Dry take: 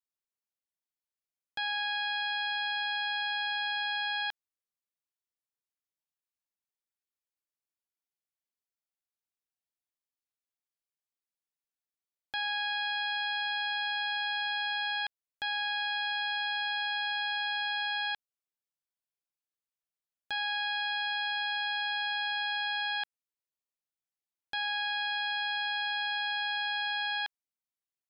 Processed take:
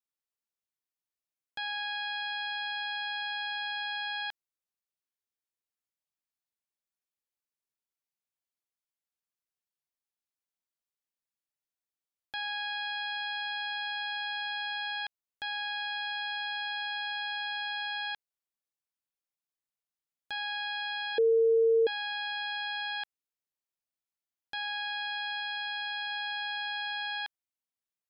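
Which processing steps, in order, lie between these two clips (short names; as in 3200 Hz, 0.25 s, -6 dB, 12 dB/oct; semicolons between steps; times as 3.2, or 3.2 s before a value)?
21.18–21.87 bleep 454 Hz -18 dBFS; 25.4–26.1 low shelf 330 Hz -9.5 dB; gain -2.5 dB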